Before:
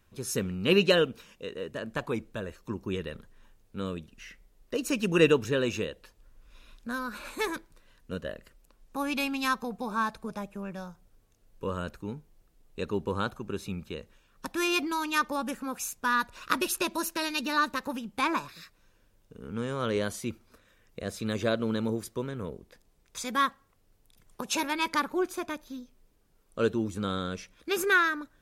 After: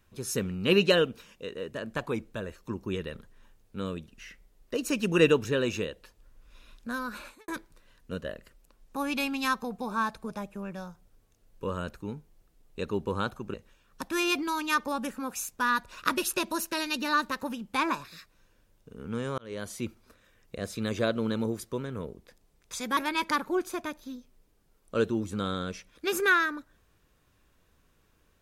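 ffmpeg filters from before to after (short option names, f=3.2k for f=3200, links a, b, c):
-filter_complex "[0:a]asplit=5[a][b][c][d][e];[a]atrim=end=7.48,asetpts=PTS-STARTPTS,afade=t=out:st=7.2:d=0.28:c=qua[f];[b]atrim=start=7.48:end=13.542,asetpts=PTS-STARTPTS,afade=t=in:d=0.004:c=hsin[g];[c]atrim=start=13.978:end=19.82,asetpts=PTS-STARTPTS,afade=t=out:st=5.838:d=0.004:c=hsin[h];[d]atrim=start=19.82:end=23.412,asetpts=PTS-STARTPTS,afade=t=in:d=0.45[i];[e]atrim=start=24.608[j];[f][g]concat=n=2:v=0:a=1[k];[h][i]concat=n=2:v=0:a=1[l];[k][l]acrossfade=d=0.004:c1=hsin:c2=hsin[m];[m][j]acrossfade=d=0.004:c1=hsin:c2=hsin"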